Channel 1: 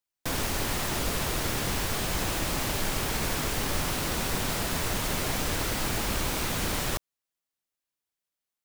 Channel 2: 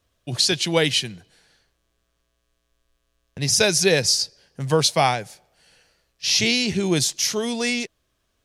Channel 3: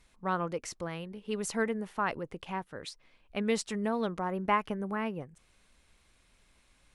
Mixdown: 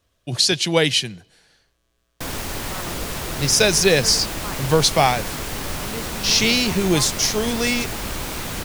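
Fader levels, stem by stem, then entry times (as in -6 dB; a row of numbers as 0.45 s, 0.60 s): +1.0 dB, +2.0 dB, -5.0 dB; 1.95 s, 0.00 s, 2.45 s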